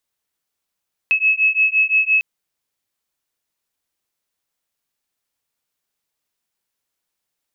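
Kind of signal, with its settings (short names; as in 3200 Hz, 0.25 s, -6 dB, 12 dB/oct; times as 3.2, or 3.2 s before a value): beating tones 2580 Hz, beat 5.8 Hz, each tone -16.5 dBFS 1.10 s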